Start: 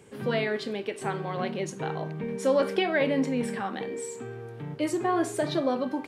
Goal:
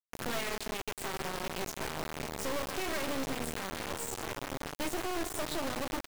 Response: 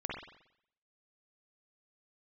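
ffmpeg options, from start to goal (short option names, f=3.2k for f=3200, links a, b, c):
-filter_complex "[0:a]highshelf=f=5.3k:g=3.5,bandreject=f=50:t=h:w=6,bandreject=f=100:t=h:w=6,bandreject=f=150:t=h:w=6,bandreject=f=200:t=h:w=6,bandreject=f=250:t=h:w=6,bandreject=f=300:t=h:w=6,asoftclip=type=tanh:threshold=-23.5dB,aecho=1:1:3.2:0.34,asplit=2[a][b];[b]adelay=1341,volume=-10dB,highshelf=f=4k:g=-30.2[c];[a][c]amix=inputs=2:normalize=0,asplit=2[d][e];[1:a]atrim=start_sample=2205,asetrate=48510,aresample=44100,adelay=135[f];[e][f]afir=irnorm=-1:irlink=0,volume=-13dB[g];[d][g]amix=inputs=2:normalize=0,acompressor=threshold=-38dB:ratio=2,acrusher=bits=3:dc=4:mix=0:aa=0.000001,volume=2dB"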